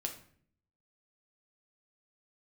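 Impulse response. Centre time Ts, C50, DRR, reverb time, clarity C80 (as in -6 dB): 15 ms, 9.5 dB, 3.0 dB, 0.55 s, 13.5 dB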